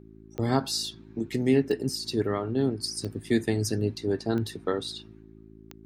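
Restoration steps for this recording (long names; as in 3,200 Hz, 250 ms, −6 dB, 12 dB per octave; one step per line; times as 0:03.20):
click removal
hum removal 54.2 Hz, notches 7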